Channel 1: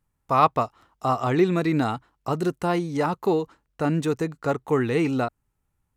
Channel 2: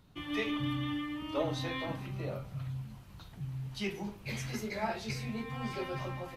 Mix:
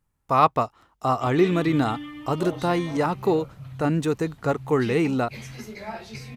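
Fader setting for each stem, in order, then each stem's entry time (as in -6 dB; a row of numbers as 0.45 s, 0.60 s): +0.5 dB, -0.5 dB; 0.00 s, 1.05 s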